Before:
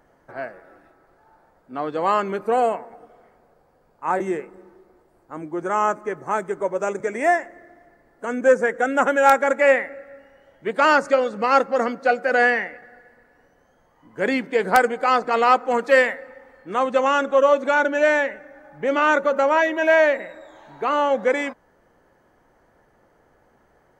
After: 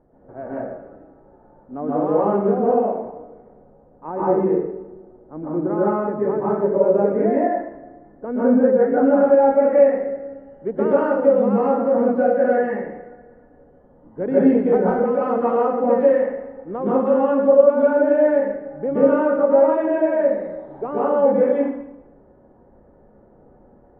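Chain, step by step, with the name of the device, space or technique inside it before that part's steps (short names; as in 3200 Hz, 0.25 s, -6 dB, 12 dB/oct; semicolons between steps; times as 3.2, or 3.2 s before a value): television next door (compressor, threshold -20 dBFS, peak gain reduction 10.5 dB; LPF 530 Hz 12 dB/oct; reverb RT60 0.80 s, pre-delay 0.116 s, DRR -8 dB); gain +3 dB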